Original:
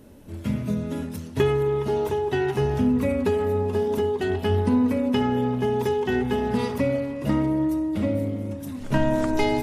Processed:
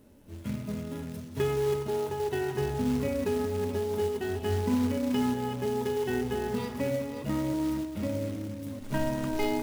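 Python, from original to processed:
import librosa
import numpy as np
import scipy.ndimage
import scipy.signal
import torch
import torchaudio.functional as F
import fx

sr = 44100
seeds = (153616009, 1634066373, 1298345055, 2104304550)

y = fx.reverse_delay(x, sr, ms=314, wet_db=-8.0)
y = fx.hpss(y, sr, part='percussive', gain_db=-4)
y = fx.quant_float(y, sr, bits=2)
y = F.gain(torch.from_numpy(y), -7.0).numpy()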